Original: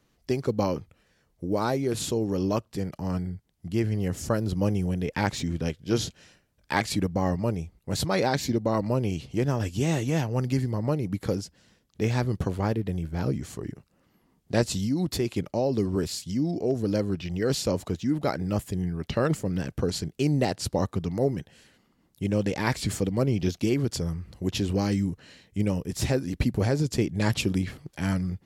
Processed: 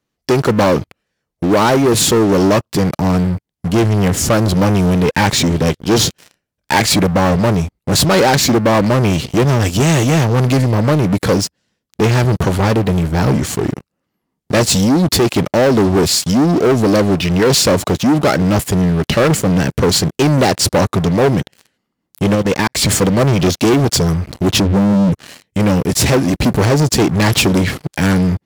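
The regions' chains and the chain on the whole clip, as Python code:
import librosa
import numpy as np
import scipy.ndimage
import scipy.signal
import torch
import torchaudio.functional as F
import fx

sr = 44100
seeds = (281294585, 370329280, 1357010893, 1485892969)

y = fx.chain(x, sr, fx.auto_swell(attack_ms=639.0),
    fx.level_steps(step_db=15), at=(22.35, 22.75))
y = fx.chain(y, sr, fx.spec_expand(power=2.8),
    fx.env_flatten(amount_pct=50), at=(24.6, 25.12))
y = fx.leveller(y, sr, passes=5)
y = fx.low_shelf(y, sr, hz=71.0, db=-9.5)
y = y * 10.0 ** (3.0 / 20.0)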